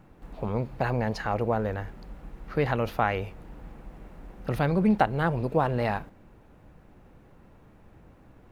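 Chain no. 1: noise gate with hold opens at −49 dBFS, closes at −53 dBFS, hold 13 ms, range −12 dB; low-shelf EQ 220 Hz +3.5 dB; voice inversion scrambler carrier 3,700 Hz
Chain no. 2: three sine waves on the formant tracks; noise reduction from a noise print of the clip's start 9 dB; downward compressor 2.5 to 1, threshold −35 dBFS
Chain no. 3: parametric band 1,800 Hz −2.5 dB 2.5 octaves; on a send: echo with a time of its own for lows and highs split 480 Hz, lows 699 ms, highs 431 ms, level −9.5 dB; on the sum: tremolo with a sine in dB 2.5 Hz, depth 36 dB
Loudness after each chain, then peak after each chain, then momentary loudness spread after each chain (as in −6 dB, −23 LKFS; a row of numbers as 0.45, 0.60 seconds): −23.0, −36.0, −36.0 LKFS; −6.5, −22.0, −12.5 dBFS; 17, 11, 23 LU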